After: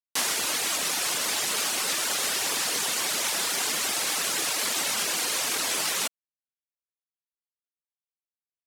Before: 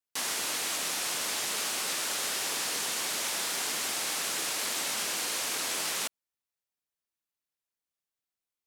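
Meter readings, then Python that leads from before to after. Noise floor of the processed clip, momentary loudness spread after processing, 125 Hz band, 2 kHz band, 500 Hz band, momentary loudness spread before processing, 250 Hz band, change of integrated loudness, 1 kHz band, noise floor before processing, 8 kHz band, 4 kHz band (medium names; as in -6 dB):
under -85 dBFS, 0 LU, +5.0 dB, +4.5 dB, +4.5 dB, 0 LU, +4.5 dB, +4.5 dB, +4.5 dB, under -85 dBFS, +4.5 dB, +4.5 dB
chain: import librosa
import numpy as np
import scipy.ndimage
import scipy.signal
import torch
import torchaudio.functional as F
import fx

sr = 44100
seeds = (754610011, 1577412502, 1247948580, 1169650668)

y = fx.dereverb_blind(x, sr, rt60_s=0.72)
y = np.sign(y) * np.maximum(np.abs(y) - 10.0 ** (-54.0 / 20.0), 0.0)
y = F.gain(torch.from_numpy(y), 7.5).numpy()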